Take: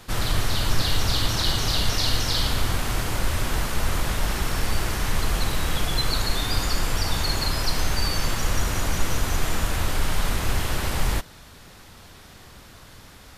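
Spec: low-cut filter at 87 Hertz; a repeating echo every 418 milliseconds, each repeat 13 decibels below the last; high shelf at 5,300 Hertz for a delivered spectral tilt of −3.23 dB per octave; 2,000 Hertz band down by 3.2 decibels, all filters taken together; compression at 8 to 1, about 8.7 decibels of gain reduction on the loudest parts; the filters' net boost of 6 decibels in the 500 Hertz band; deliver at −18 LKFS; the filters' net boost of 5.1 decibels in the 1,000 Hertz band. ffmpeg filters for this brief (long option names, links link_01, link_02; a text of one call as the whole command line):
ffmpeg -i in.wav -af "highpass=87,equalizer=frequency=500:width_type=o:gain=6,equalizer=frequency=1000:width_type=o:gain=6.5,equalizer=frequency=2000:width_type=o:gain=-8,highshelf=frequency=5300:gain=6,acompressor=threshold=-29dB:ratio=8,aecho=1:1:418|836|1254:0.224|0.0493|0.0108,volume=13.5dB" out.wav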